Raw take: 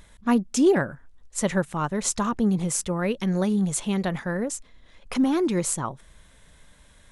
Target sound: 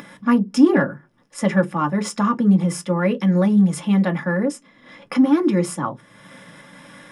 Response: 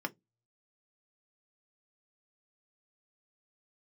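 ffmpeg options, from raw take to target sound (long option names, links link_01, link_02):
-filter_complex "[0:a]aeval=exprs='0.355*(cos(1*acos(clip(val(0)/0.355,-1,1)))-cos(1*PI/2))+0.0158*(cos(5*acos(clip(val(0)/0.355,-1,1)))-cos(5*PI/2))':channel_layout=same,acompressor=mode=upward:threshold=-29dB:ratio=2.5[link_01];[1:a]atrim=start_sample=2205[link_02];[link_01][link_02]afir=irnorm=-1:irlink=0"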